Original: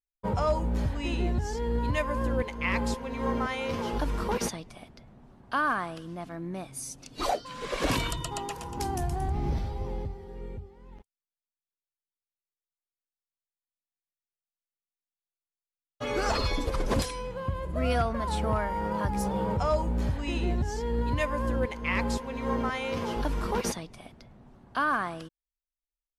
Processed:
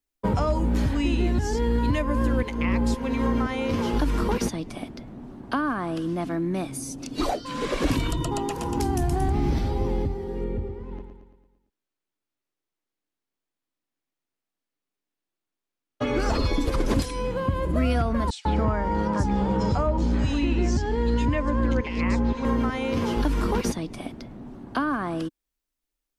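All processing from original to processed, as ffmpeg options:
-filter_complex "[0:a]asettb=1/sr,asplit=3[s0][s1][s2];[s0]atrim=end=10.444[s3];[s1]atrim=start=10.44:end=16.2,asetpts=PTS-STARTPTS,afade=t=in:d=0.004:c=qsin,afade=t=out:st=5.756:d=0.004:c=qsin,highshelf=f=5000:g=-11,aecho=1:1:113|226|339|452|565|678:0.422|0.223|0.118|0.0628|0.0333|0.0176,atrim=end_sample=254016[s4];[s2]atrim=start=16.196[s5];[s3][s4]acrossfade=d=0.004:c1=hsin:c2=qsin[s6];[s6][s5]acrossfade=d=0.004:c1=qsin:c2=hsin,asettb=1/sr,asplit=3[s7][s8][s9];[s7]atrim=end=18.304[s10];[s8]atrim=start=18.3:end=22.45,asetpts=PTS-STARTPTS,afade=t=in:d=0.004:c=qsin,afade=t=out:st=4.146:d=0.004:c=qsin,lowpass=f=7400:w=0.5412,lowpass=f=7400:w=1.3066,acrossover=split=3000[s11][s12];[s11]adelay=150[s13];[s13][s12]amix=inputs=2:normalize=0,atrim=end_sample=183015[s14];[s9]atrim=start=22.446[s15];[s10][s14]acrossfade=d=0.004:c1=hsin:c2=qsin[s16];[s16][s15]acrossfade=d=0.004:c1=qsin:c2=hsin,equalizer=f=290:t=o:w=0.87:g=11,acrossover=split=140|1100[s17][s18][s19];[s17]acompressor=threshold=0.0282:ratio=4[s20];[s18]acompressor=threshold=0.0178:ratio=4[s21];[s19]acompressor=threshold=0.00708:ratio=4[s22];[s20][s21][s22]amix=inputs=3:normalize=0,volume=2.66"

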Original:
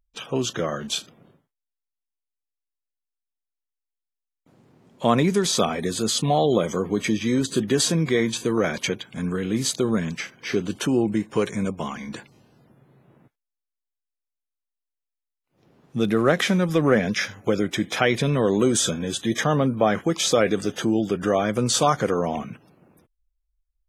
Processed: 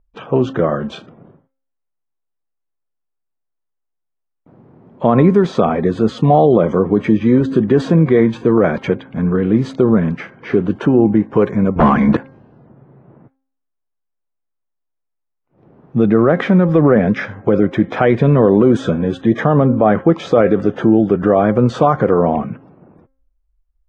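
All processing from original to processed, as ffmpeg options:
-filter_complex "[0:a]asettb=1/sr,asplit=3[s0][s1][s2];[s0]atrim=end=11.764[s3];[s1]atrim=start=11.76:end=12.17,asetpts=PTS-STARTPTS,afade=t=in:d=0.004:c=qsin,afade=t=out:st=0.406:d=0.004:c=qsin,lowpass=7300,aeval=exprs='0.178*sin(PI/2*2.82*val(0)/0.178)':c=same[s4];[s2]atrim=start=12.166[s5];[s3][s4]acrossfade=d=0.004:c1=hsin:c2=qsin[s6];[s6][s5]acrossfade=d=0.004:c1=qsin:c2=hsin,lowpass=1200,bandreject=f=266.9:t=h:w=4,bandreject=f=533.8:t=h:w=4,bandreject=f=800.7:t=h:w=4,bandreject=f=1067.6:t=h:w=4,bandreject=f=1334.5:t=h:w=4,bandreject=f=1601.4:t=h:w=4,bandreject=f=1868.3:t=h:w=4,bandreject=f=2135.2:t=h:w=4,alimiter=level_in=3.98:limit=0.891:release=50:level=0:latency=1,volume=0.891"

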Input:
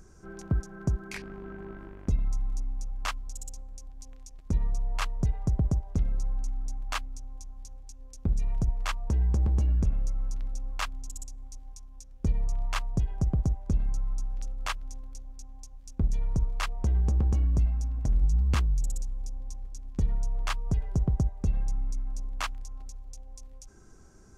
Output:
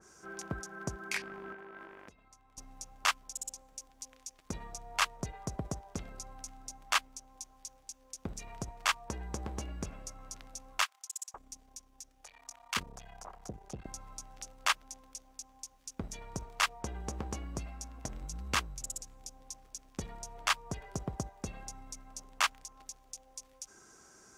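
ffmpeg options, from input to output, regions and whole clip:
-filter_complex "[0:a]asettb=1/sr,asplit=3[s0][s1][s2];[s0]atrim=end=1.534[s3];[s1]atrim=start=1.53:end=2.58,asetpts=PTS-STARTPTS,afade=t=in:d=0.004:c=qsin,afade=t=out:st=1.046:d=0.004:c=qsin,bass=f=250:g=-7,treble=f=4000:g=-5,acompressor=threshold=0.00708:ratio=16:attack=3.2:release=140:knee=1:detection=peak[s4];[s2]atrim=start=2.576[s5];[s3][s4]acrossfade=d=0.004:c1=hsin:c2=qsin[s6];[s6][s5]acrossfade=d=0.004:c1=qsin:c2=hsin,asettb=1/sr,asplit=3[s7][s8][s9];[s7]atrim=end=10.824[s10];[s8]atrim=start=10.82:end=13.86,asetpts=PTS-STARTPTS,afade=t=in:d=0.004:c=qsin,afade=t=out:st=3.036:d=0.004:c=qsin,aeval=exprs='(tanh(17.8*val(0)+0.6)-tanh(0.6))/17.8':c=same,acrossover=split=780[s11][s12];[s11]adelay=520[s13];[s13][s12]amix=inputs=2:normalize=0,atrim=end_sample=134064[s14];[s9]atrim=start=13.856[s15];[s10][s14]acrossfade=d=0.004:c1=hsin:c2=qsin[s16];[s16][s15]acrossfade=d=0.004:c1=qsin:c2=hsin,highpass=f=1100:p=1,bandreject=f=4100:w=29,adynamicequalizer=threshold=0.002:dfrequency=2400:dqfactor=0.7:tfrequency=2400:tqfactor=0.7:attack=5:release=100:ratio=0.375:range=2:mode=cutabove:tftype=highshelf,volume=2.11"

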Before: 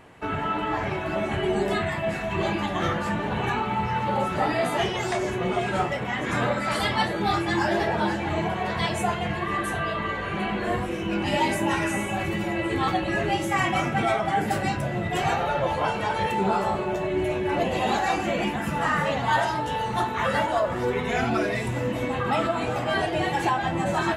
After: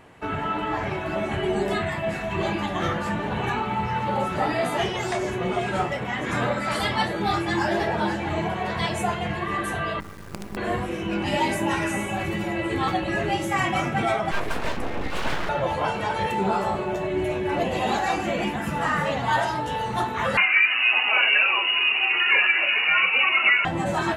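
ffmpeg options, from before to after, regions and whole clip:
-filter_complex "[0:a]asettb=1/sr,asplit=3[s0][s1][s2];[s0]atrim=end=10.004[s3];[s1]atrim=start=10:end=10.57,asetpts=PTS-STARTPTS,afade=t=in:d=0.004:c=qsin,afade=t=out:st=0.566:d=0.004:c=qsin,lowpass=1000,equalizer=f=700:t=o:w=1.6:g=-14.5,acrusher=bits=5:dc=4:mix=0:aa=0.000001[s4];[s2]atrim=start=10.566[s5];[s3][s4]acrossfade=d=0.004:c1=hsin:c2=qsin[s6];[s6][s5]acrossfade=d=0.004:c1=qsin:c2=hsin,asettb=1/sr,asplit=3[s7][s8][s9];[s7]atrim=end=14.314[s10];[s8]atrim=start=14.31:end=15.49,asetpts=PTS-STARTPTS,afade=t=in:d=0.004:c=qsin,afade=t=out:st=1.176:d=0.004:c=qsin,bass=f=250:g=3,treble=f=4000:g=-6,aeval=exprs='abs(val(0))':c=same[s11];[s9]atrim=start=15.486[s12];[s10][s11]acrossfade=d=0.004:c1=hsin:c2=qsin[s13];[s13][s12]acrossfade=d=0.004:c1=qsin:c2=hsin,asettb=1/sr,asplit=3[s14][s15][s16];[s14]atrim=end=20.374[s17];[s15]atrim=start=20.37:end=23.65,asetpts=PTS-STARTPTS,afade=t=in:d=0.004:c=qsin,afade=t=out:st=3.276:d=0.004:c=qsin,acontrast=27,lowpass=f=2600:t=q:w=0.5098,lowpass=f=2600:t=q:w=0.6013,lowpass=f=2600:t=q:w=0.9,lowpass=f=2600:t=q:w=2.563,afreqshift=-3000,highpass=240[s18];[s16]atrim=start=23.646[s19];[s17][s18]acrossfade=d=0.004:c1=hsin:c2=qsin[s20];[s20][s19]acrossfade=d=0.004:c1=qsin:c2=hsin"

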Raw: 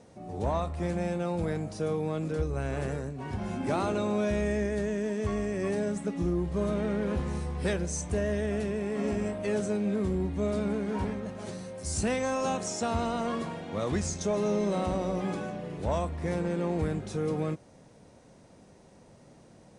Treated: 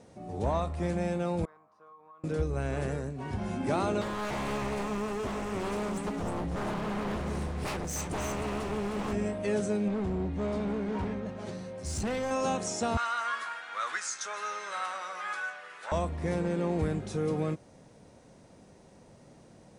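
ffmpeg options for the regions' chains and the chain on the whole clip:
-filter_complex "[0:a]asettb=1/sr,asplit=3[s0][s1][s2];[s0]atrim=end=1.454[s3];[s1]atrim=start=1.45:end=2.24,asetpts=PTS-STARTPTS,afade=t=in:d=0.004:c=qsin,afade=t=out:st=0.786:d=0.004:c=qsin,bandpass=f=1100:t=q:w=12,acompressor=threshold=0.00316:ratio=4:attack=3.2:release=140:knee=1:detection=peak[s4];[s2]atrim=start=2.236[s5];[s3][s4]acrossfade=d=0.004:c1=hsin:c2=qsin[s6];[s6][s5]acrossfade=d=0.004:c1=qsin:c2=hsin,asettb=1/sr,asplit=3[s7][s8][s9];[s7]atrim=end=4.014[s10];[s8]atrim=start=4.01:end=9.13,asetpts=PTS-STARTPTS,afade=t=in:d=0.004:c=qsin,afade=t=out:st=5.116:d=0.004:c=qsin,aeval=exprs='0.0355*(abs(mod(val(0)/0.0355+3,4)-2)-1)':c=same,aecho=1:1:309:0.473,atrim=end_sample=225792[s11];[s9]atrim=start=9.126[s12];[s10][s11]acrossfade=d=0.004:c1=hsin:c2=qsin[s13];[s13][s12]acrossfade=d=0.004:c1=qsin:c2=hsin,asettb=1/sr,asplit=3[s14][s15][s16];[s14]atrim=end=9.884[s17];[s15]atrim=start=9.88:end=12.31,asetpts=PTS-STARTPTS,afade=t=in:d=0.004:c=qsin,afade=t=out:st=2.426:d=0.004:c=qsin,volume=25.1,asoftclip=hard,volume=0.0398,adynamicsmooth=sensitivity=7:basefreq=6300[s18];[s16]atrim=start=12.306[s19];[s17][s18]acrossfade=d=0.004:c1=hsin:c2=qsin[s20];[s20][s19]acrossfade=d=0.004:c1=qsin:c2=hsin,asettb=1/sr,asplit=3[s21][s22][s23];[s21]atrim=end=12.974[s24];[s22]atrim=start=12.97:end=15.92,asetpts=PTS-STARTPTS,afade=t=in:d=0.004:c=qsin,afade=t=out:st=2.946:d=0.004:c=qsin,highpass=f=1400:t=q:w=4,asplit=2[s25][s26];[s26]adelay=12,volume=0.282[s27];[s25][s27]amix=inputs=2:normalize=0,atrim=end_sample=130095[s28];[s23]atrim=start=15.916[s29];[s24][s28]acrossfade=d=0.004:c1=hsin:c2=qsin[s30];[s30][s29]acrossfade=d=0.004:c1=qsin:c2=hsin"

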